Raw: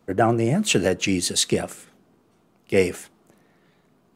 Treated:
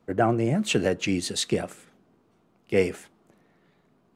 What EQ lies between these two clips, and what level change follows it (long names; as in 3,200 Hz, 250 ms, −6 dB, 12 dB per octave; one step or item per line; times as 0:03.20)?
high-shelf EQ 5,800 Hz −8.5 dB
−3.0 dB